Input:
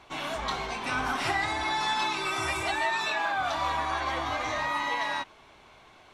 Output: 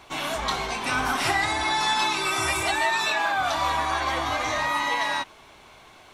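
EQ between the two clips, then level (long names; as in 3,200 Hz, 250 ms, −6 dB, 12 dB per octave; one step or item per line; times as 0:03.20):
high-shelf EQ 7,700 Hz +11 dB
+4.0 dB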